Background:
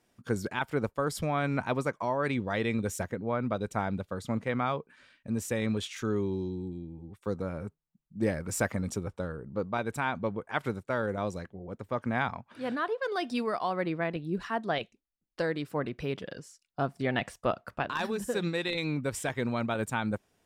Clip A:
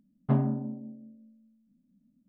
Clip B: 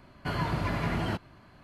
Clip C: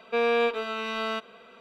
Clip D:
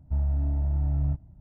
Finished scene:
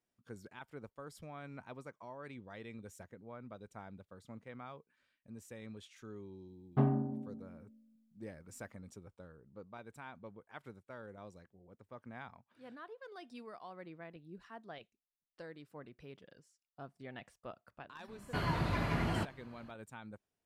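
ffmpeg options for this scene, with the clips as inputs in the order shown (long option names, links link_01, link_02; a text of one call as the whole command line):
ffmpeg -i bed.wav -i cue0.wav -i cue1.wav -filter_complex "[0:a]volume=-19dB[link_01];[1:a]aecho=1:1:2.6:0.39,atrim=end=2.28,asetpts=PTS-STARTPTS,volume=-3dB,afade=type=in:duration=0.004:curve=hsin,afade=type=out:start_time=2.276:duration=0.004:curve=hsin,adelay=6480[link_02];[2:a]atrim=end=1.63,asetpts=PTS-STARTPTS,volume=-4dB,afade=type=in:duration=0.004:curve=hsin,afade=type=out:start_time=1.626:duration=0.004:curve=hsin,adelay=18080[link_03];[link_01][link_02][link_03]amix=inputs=3:normalize=0" out.wav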